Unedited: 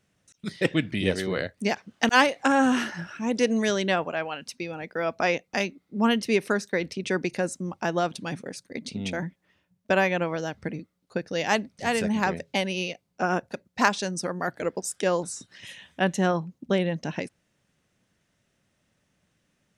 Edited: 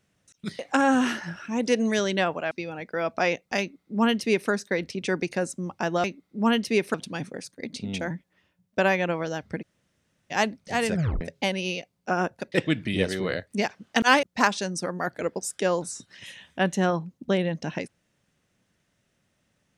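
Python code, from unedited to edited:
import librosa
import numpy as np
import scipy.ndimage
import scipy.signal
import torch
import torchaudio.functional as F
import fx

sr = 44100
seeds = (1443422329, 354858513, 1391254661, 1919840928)

y = fx.edit(x, sr, fx.move(start_s=0.59, length_s=1.71, to_s=13.64),
    fx.cut(start_s=4.22, length_s=0.31),
    fx.duplicate(start_s=5.62, length_s=0.9, to_s=8.06),
    fx.room_tone_fill(start_s=10.74, length_s=0.69, crossfade_s=0.02),
    fx.tape_stop(start_s=12.06, length_s=0.27), tone=tone)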